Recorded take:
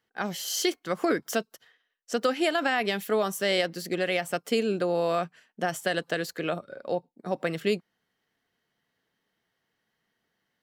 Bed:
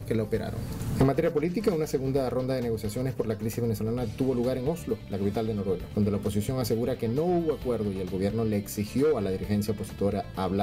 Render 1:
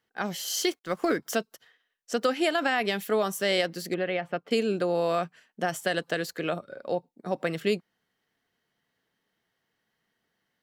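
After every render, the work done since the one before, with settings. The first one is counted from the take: 0.6–1.17 G.711 law mismatch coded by A; 3.94–4.51 air absorption 360 m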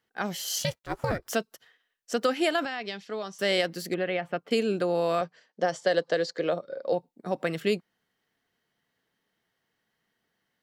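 0.58–1.31 ring modulator 210 Hz; 2.65–3.39 ladder low-pass 6100 Hz, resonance 45%; 5.21–6.93 speaker cabinet 160–6600 Hz, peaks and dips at 230 Hz -5 dB, 520 Hz +8 dB, 1400 Hz -4 dB, 2600 Hz -7 dB, 4800 Hz +5 dB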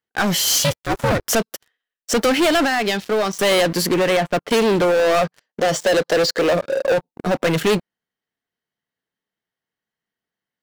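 sample leveller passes 5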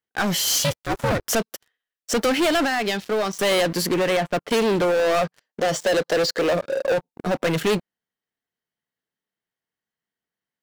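gain -3.5 dB

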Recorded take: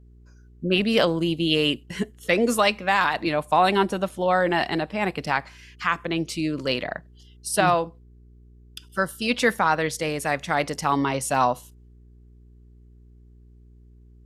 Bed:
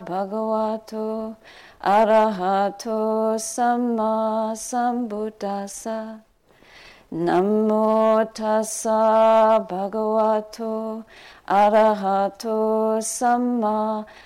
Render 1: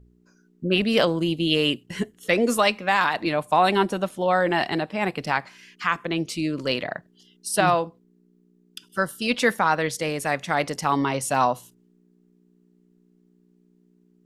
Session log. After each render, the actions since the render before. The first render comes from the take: de-hum 60 Hz, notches 2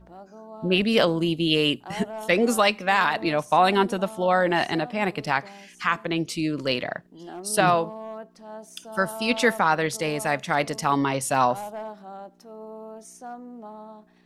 add bed -19.5 dB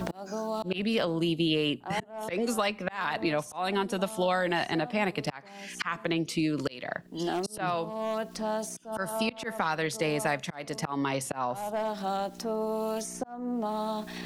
auto swell 0.788 s; three-band squash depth 100%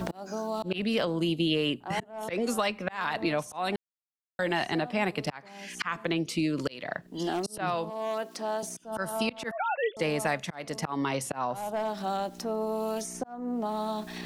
3.76–4.39 mute; 7.9–8.63 HPF 250 Hz 24 dB/oct; 9.51–9.97 sine-wave speech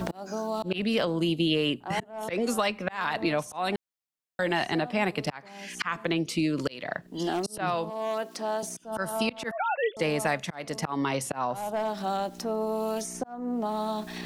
gain +1.5 dB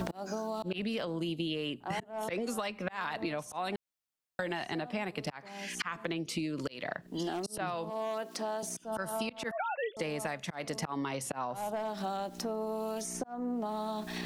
compressor, threshold -32 dBFS, peak gain reduction 11 dB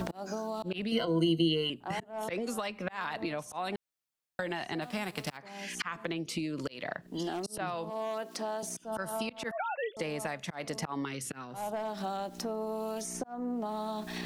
0.91–1.7 ripple EQ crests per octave 1.9, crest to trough 18 dB; 4.81–5.36 spectral whitening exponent 0.6; 11.05–11.54 band shelf 760 Hz -13.5 dB 1.2 oct

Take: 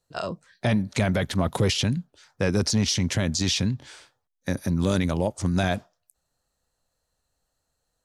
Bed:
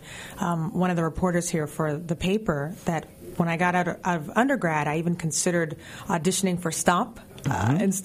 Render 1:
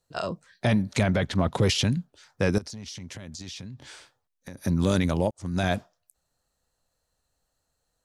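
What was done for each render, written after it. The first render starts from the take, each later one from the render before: 1.03–1.62 air absorption 63 m; 2.58–4.65 compressor 5:1, threshold -38 dBFS; 5.31–5.71 fade in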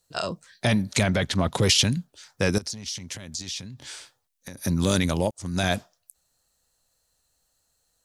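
high shelf 2900 Hz +10.5 dB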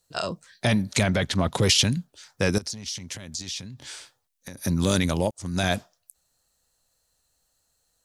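nothing audible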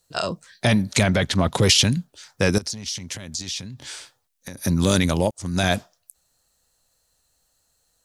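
gain +3.5 dB; limiter -3 dBFS, peak gain reduction 1 dB

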